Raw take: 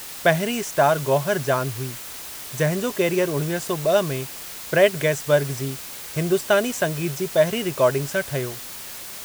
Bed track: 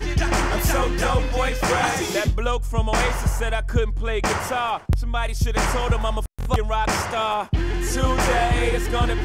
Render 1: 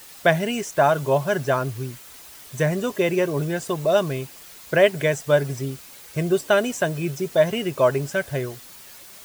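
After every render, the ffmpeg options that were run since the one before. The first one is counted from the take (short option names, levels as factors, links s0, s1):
-af "afftdn=nr=9:nf=-36"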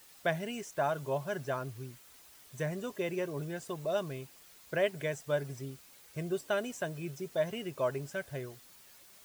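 -af "volume=0.211"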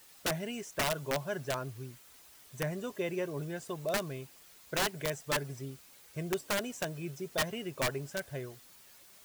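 -af "aeval=exprs='(mod(16.8*val(0)+1,2)-1)/16.8':c=same"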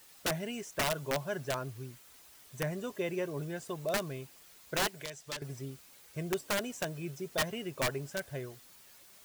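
-filter_complex "[0:a]asettb=1/sr,asplit=3[s0][s1][s2];[s0]atrim=end=4.874[s3];[s1]atrim=start=4.87:end=5.42,asetpts=PTS-STARTPTS,afade=t=in:d=0.004:c=qsin,afade=t=out:st=0.546:d=0.004:c=qsin,acrossover=split=510|2700|7800[s4][s5][s6][s7];[s4]acompressor=threshold=0.00251:ratio=3[s8];[s5]acompressor=threshold=0.00355:ratio=3[s9];[s6]acompressor=threshold=0.0112:ratio=3[s10];[s7]acompressor=threshold=0.00158:ratio=3[s11];[s8][s9][s10][s11]amix=inputs=4:normalize=0[s12];[s2]atrim=start=5.416[s13];[s3][s12]acrossfade=d=0.004:c1=hsin:c2=qsin[s14];[s14][s13]acrossfade=d=0.004:c1=qsin:c2=hsin"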